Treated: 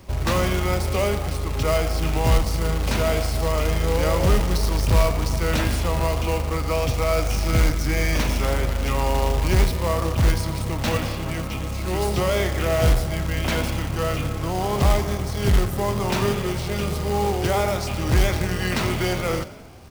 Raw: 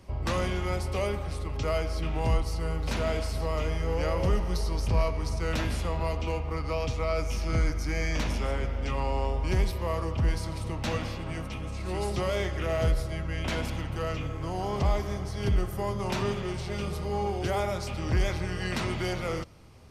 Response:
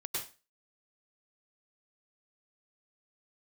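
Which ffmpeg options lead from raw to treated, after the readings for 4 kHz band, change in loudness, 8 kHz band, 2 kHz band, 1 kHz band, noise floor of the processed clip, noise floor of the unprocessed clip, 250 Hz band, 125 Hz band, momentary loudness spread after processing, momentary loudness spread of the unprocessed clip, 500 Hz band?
+9.0 dB, +7.5 dB, +11.5 dB, +8.0 dB, +7.5 dB, −28 dBFS, −35 dBFS, +7.5 dB, +7.5 dB, 5 LU, 5 LU, +7.5 dB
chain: -filter_complex "[0:a]asplit=7[link_01][link_02][link_03][link_04][link_05][link_06][link_07];[link_02]adelay=89,afreqshift=50,volume=-17dB[link_08];[link_03]adelay=178,afreqshift=100,volume=-21.3dB[link_09];[link_04]adelay=267,afreqshift=150,volume=-25.6dB[link_10];[link_05]adelay=356,afreqshift=200,volume=-29.9dB[link_11];[link_06]adelay=445,afreqshift=250,volume=-34.2dB[link_12];[link_07]adelay=534,afreqshift=300,volume=-38.5dB[link_13];[link_01][link_08][link_09][link_10][link_11][link_12][link_13]amix=inputs=7:normalize=0,acrusher=bits=3:mode=log:mix=0:aa=0.000001,volume=7dB"

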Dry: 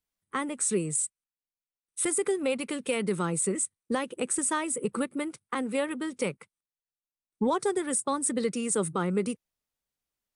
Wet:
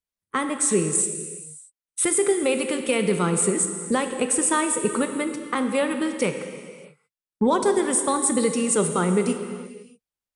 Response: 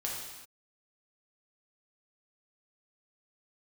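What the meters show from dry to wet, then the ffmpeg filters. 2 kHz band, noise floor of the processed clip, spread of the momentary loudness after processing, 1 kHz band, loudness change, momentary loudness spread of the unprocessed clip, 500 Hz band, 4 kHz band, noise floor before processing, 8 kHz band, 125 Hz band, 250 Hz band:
+7.0 dB, below −85 dBFS, 14 LU, +7.0 dB, +7.0 dB, 7 LU, +7.0 dB, +7.0 dB, below −85 dBFS, +7.0 dB, +6.5 dB, +7.0 dB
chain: -filter_complex "[0:a]agate=range=-11dB:threshold=-49dB:ratio=16:detection=peak,asplit=2[link_01][link_02];[1:a]atrim=start_sample=2205,afade=type=out:start_time=0.4:duration=0.01,atrim=end_sample=18081,asetrate=24255,aresample=44100[link_03];[link_02][link_03]afir=irnorm=-1:irlink=0,volume=-10.5dB[link_04];[link_01][link_04]amix=inputs=2:normalize=0,volume=3.5dB"

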